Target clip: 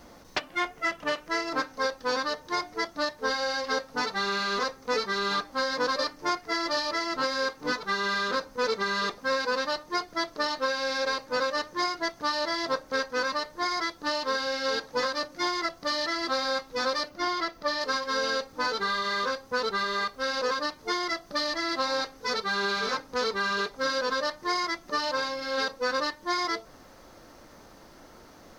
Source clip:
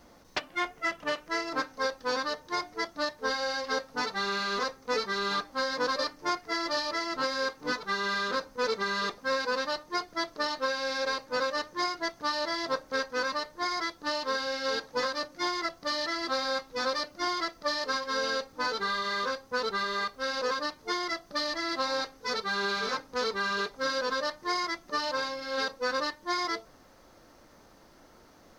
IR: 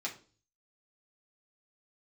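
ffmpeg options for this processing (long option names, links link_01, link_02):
-filter_complex "[0:a]asettb=1/sr,asplit=3[link_01][link_02][link_03];[link_01]atrim=end=17.094[link_04];[link_02]atrim=start=17.09:end=17.81,asetpts=PTS-STARTPTS,afade=type=in:duration=0.004:curve=qsin,afade=type=out:start_time=0.716:duration=0.004:curve=qsin,equalizer=frequency=8600:width=0.81:gain=-6.5[link_05];[link_03]atrim=start=17.806[link_06];[link_04][link_05]acrossfade=duration=0.004:curve1=hsin:curve2=qsin[link_07];[link_07][link_06]acrossfade=duration=0.004:curve1=qsin:curve2=hsin,asplit=2[link_08][link_09];[link_09]acompressor=threshold=-38dB:ratio=6,volume=-1dB[link_10];[link_08][link_10]amix=inputs=2:normalize=0"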